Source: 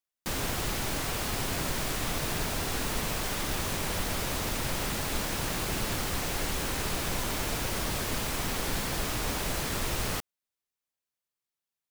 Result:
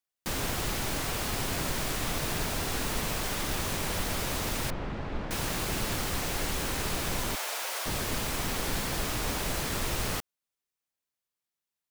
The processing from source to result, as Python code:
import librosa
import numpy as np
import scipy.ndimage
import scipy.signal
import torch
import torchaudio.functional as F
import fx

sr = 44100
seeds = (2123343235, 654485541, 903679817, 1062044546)

y = fx.spacing_loss(x, sr, db_at_10k=40, at=(4.7, 5.31))
y = fx.highpass(y, sr, hz=550.0, slope=24, at=(7.35, 7.86))